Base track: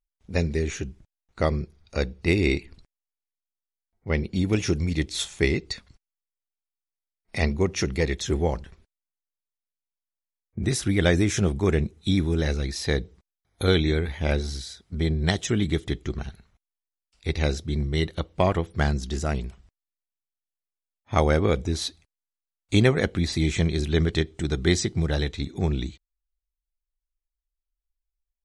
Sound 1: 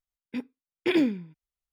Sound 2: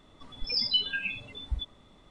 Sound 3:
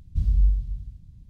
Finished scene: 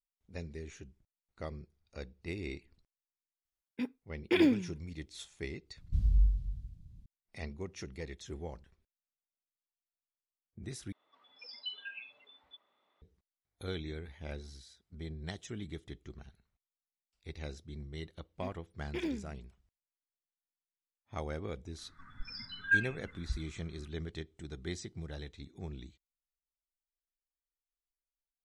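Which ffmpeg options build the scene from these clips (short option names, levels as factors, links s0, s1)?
-filter_complex "[1:a]asplit=2[s0][s1];[2:a]asplit=2[s2][s3];[0:a]volume=0.119[s4];[s2]highpass=640,lowpass=2900[s5];[s3]firequalizer=gain_entry='entry(160,0);entry(500,-22);entry(1500,14);entry(2900,-18);entry(5100,-13)':delay=0.05:min_phase=1[s6];[s4]asplit=2[s7][s8];[s7]atrim=end=10.924[s9];[s5]atrim=end=2.1,asetpts=PTS-STARTPTS,volume=0.266[s10];[s8]atrim=start=13.016[s11];[s0]atrim=end=1.72,asetpts=PTS-STARTPTS,volume=0.708,afade=t=in:d=0.004:c=hsin,afade=t=out:st=1.716:d=0.004:c=hsin,adelay=152145S[s12];[3:a]atrim=end=1.29,asetpts=PTS-STARTPTS,volume=0.473,afade=t=in:d=0.004:c=hsin,afade=t=out:st=1.286:d=0.004:c=hsin,adelay=254457S[s13];[s1]atrim=end=1.72,asetpts=PTS-STARTPTS,volume=0.211,afade=t=in:d=0.004:c=hsin,afade=t=out:st=1.716:d=0.004:c=hsin,adelay=18080[s14];[s6]atrim=end=2.1,asetpts=PTS-STARTPTS,volume=0.596,afade=t=in:d=0.004:c=hsin,afade=t=out:st=2.096:d=0.004:c=hsin,adelay=21780[s15];[s9][s10]acrossfade=d=0.004:c1=hsin:c2=hsin[s16];[s16][s11]acrossfade=d=0.004:c1=hsin:c2=hsin[s17];[s17][s12][s13][s14][s15]amix=inputs=5:normalize=0"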